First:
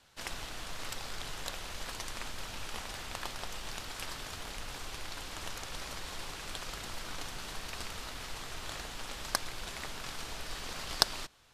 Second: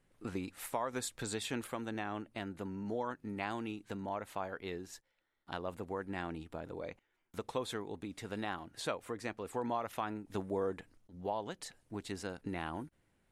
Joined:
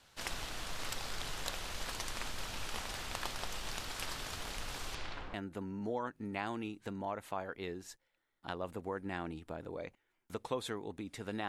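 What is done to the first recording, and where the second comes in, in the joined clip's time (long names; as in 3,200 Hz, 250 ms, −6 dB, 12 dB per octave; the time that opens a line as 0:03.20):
first
0:04.94–0:05.34: low-pass filter 6,800 Hz → 1,200 Hz
0:05.34: continue with second from 0:02.38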